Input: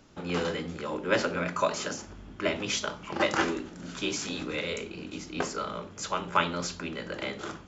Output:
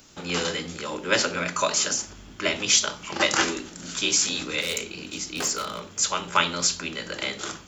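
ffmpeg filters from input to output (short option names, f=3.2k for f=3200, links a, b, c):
-filter_complex "[0:a]asplit=3[a][b][c];[a]afade=t=out:st=4.6:d=0.02[d];[b]volume=28dB,asoftclip=hard,volume=-28dB,afade=t=in:st=4.6:d=0.02,afade=t=out:st=5.89:d=0.02[e];[c]afade=t=in:st=5.89:d=0.02[f];[d][e][f]amix=inputs=3:normalize=0,crystalizer=i=5.5:c=0"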